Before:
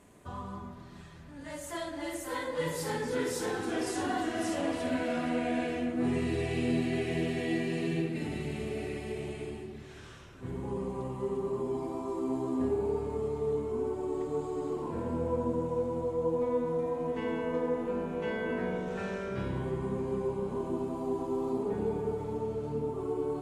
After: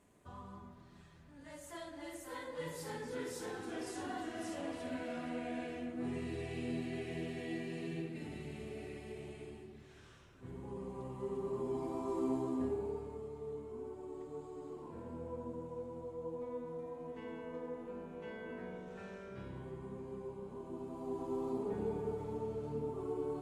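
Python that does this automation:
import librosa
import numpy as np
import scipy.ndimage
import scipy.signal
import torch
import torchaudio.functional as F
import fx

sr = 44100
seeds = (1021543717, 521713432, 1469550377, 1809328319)

y = fx.gain(x, sr, db=fx.line((10.7, -10.0), (12.24, -2.0), (13.26, -13.0), (20.63, -13.0), (21.32, -6.0)))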